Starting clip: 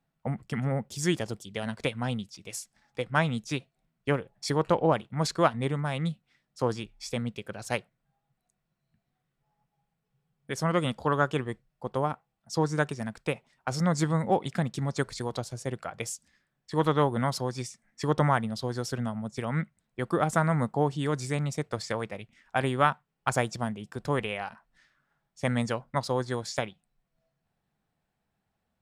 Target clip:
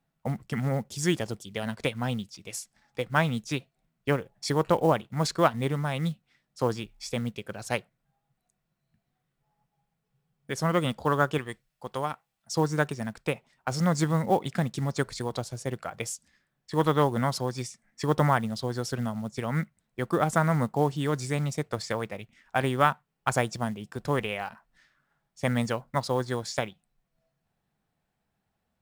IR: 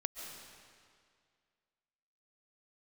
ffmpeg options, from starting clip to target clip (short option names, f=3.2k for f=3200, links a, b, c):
-filter_complex "[0:a]asettb=1/sr,asplit=3[a][b][c];[a]atrim=end=11.384[d];[b]atrim=start=11.38:end=12.53,asetpts=PTS-STARTPTS,afade=t=in:d=0.004:c=qsin,afade=t=out:st=1.146:d=0.004:c=qsin,tiltshelf=f=1.3k:g=-6.5[e];[c]atrim=start=12.526[f];[d][e]acrossfade=d=0.004:c1=hsin:c2=qsin[g];[g][f]acrossfade=d=0.004:c1=qsin:c2=hsin,acrusher=bits=7:mode=log:mix=0:aa=0.000001,volume=1dB"